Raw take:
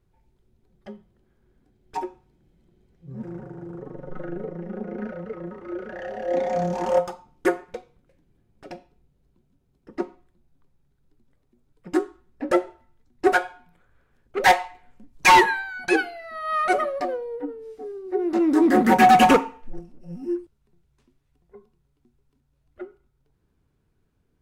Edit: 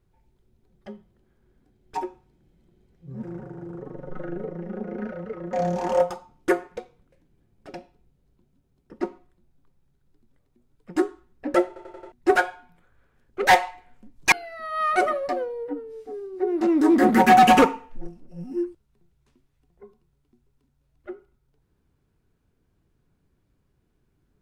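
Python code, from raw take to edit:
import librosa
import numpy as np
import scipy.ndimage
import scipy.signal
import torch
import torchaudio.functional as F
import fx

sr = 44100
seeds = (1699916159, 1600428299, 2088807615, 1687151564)

y = fx.edit(x, sr, fx.cut(start_s=5.53, length_s=0.97),
    fx.stutter_over(start_s=12.64, slice_s=0.09, count=5),
    fx.cut(start_s=15.29, length_s=0.75), tone=tone)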